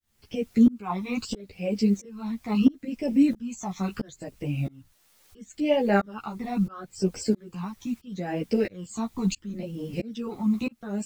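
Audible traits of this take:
phaser sweep stages 12, 0.74 Hz, lowest notch 490–1,300 Hz
a quantiser's noise floor 10 bits, dither triangular
tremolo saw up 1.5 Hz, depth 100%
a shimmering, thickened sound

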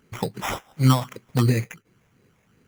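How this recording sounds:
phaser sweep stages 6, 2.8 Hz, lowest notch 310–1,300 Hz
aliases and images of a low sample rate 4,400 Hz, jitter 0%

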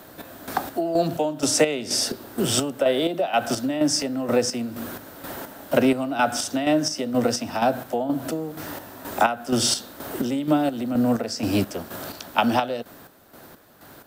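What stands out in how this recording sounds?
chopped level 2.1 Hz, depth 60%, duty 45%

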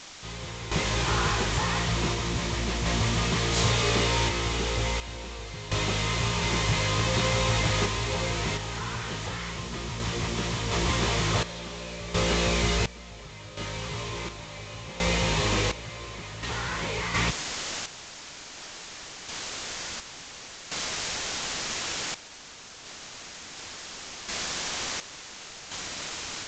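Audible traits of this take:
a quantiser's noise floor 6 bits, dither triangular
sample-and-hold tremolo 1.4 Hz, depth 90%
Ogg Vorbis

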